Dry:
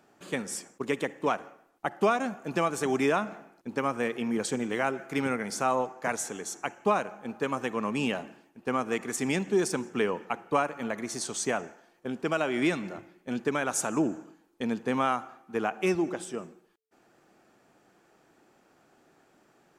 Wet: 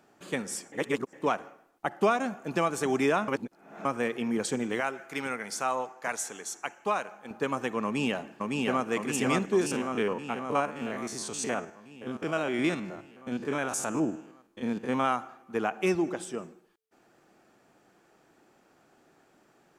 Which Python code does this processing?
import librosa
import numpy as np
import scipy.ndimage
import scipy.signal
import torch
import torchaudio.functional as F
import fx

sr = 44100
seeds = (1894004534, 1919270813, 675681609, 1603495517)

y = fx.low_shelf(x, sr, hz=490.0, db=-10.5, at=(4.8, 7.31))
y = fx.echo_throw(y, sr, start_s=7.84, length_s=1.05, ms=560, feedback_pct=70, wet_db=-1.5)
y = fx.spec_steps(y, sr, hold_ms=50, at=(9.6, 15.03), fade=0.02)
y = fx.edit(y, sr, fx.reverse_span(start_s=0.72, length_s=0.41),
    fx.reverse_span(start_s=3.28, length_s=0.57), tone=tone)